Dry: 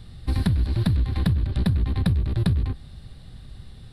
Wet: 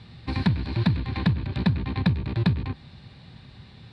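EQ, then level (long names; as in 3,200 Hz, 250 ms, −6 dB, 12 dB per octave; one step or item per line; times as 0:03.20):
bass and treble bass +3 dB, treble −3 dB
loudspeaker in its box 130–6,900 Hz, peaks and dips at 930 Hz +8 dB, 1,700 Hz +3 dB, 2,400 Hz +9 dB, 4,200 Hz +4 dB
0.0 dB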